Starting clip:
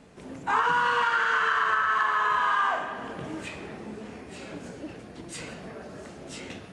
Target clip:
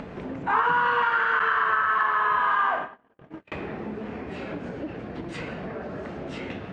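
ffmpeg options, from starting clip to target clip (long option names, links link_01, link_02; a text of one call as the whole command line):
ffmpeg -i in.wav -filter_complex "[0:a]asettb=1/sr,asplit=3[link_01][link_02][link_03];[link_01]atrim=end=1.394[link_04];[link_02]atrim=start=1.39:end=3.52,asetpts=PTS-STARTPTS,afade=type=in:duration=0.004:curve=qsin,afade=type=out:start_time=2.126:duration=0.004:curve=qsin,agate=range=-58dB:threshold=-31dB:ratio=16:detection=peak[link_05];[link_03]atrim=start=3.516[link_06];[link_04][link_05]acrossfade=duration=0.004:curve1=hsin:curve2=qsin[link_07];[link_07][link_06]acrossfade=duration=0.004:curve1=qsin:curve2=hsin,lowpass=2400,acompressor=mode=upward:threshold=-29dB:ratio=2.5,volume=2dB" out.wav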